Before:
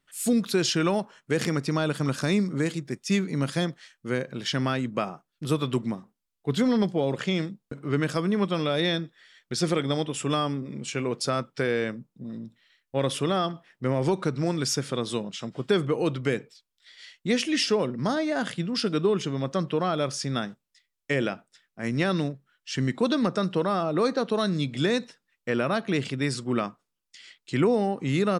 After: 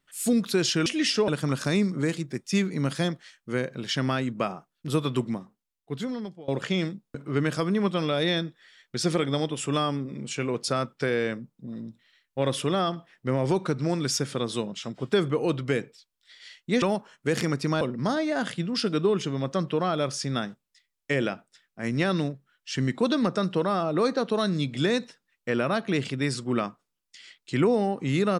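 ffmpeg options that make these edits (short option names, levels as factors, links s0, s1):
-filter_complex "[0:a]asplit=6[s0][s1][s2][s3][s4][s5];[s0]atrim=end=0.862[s6];[s1]atrim=start=17.388:end=17.812[s7];[s2]atrim=start=1.848:end=7.05,asetpts=PTS-STARTPTS,afade=t=out:st=3.942:d=1.26:silence=0.0707946[s8];[s3]atrim=start=7.05:end=17.392,asetpts=PTS-STARTPTS,afade=t=in:d=0.004:c=hsin:silence=0.0707946[s9];[s4]atrim=start=0.858:end=1.852[s10];[s5]atrim=start=17.808[s11];[s6][s7]acrossfade=d=0.004:c1=hsin:c2=hsin[s12];[s8][s9]concat=n=2:v=0:a=1[s13];[s12][s13]acrossfade=d=0.004:c1=hsin:c2=hsin[s14];[s14][s10]acrossfade=d=0.004:c1=hsin:c2=hsin[s15];[s15][s11]acrossfade=d=0.004:c1=hsin:c2=hsin"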